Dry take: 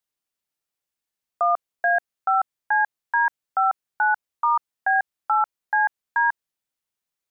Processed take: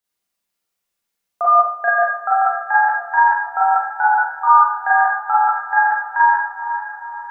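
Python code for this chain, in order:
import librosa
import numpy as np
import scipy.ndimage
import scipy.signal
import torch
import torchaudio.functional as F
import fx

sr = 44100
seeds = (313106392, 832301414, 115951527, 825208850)

y = fx.echo_diffused(x, sr, ms=488, feedback_pct=50, wet_db=-10)
y = fx.rev_schroeder(y, sr, rt60_s=0.57, comb_ms=32, drr_db=-7.0)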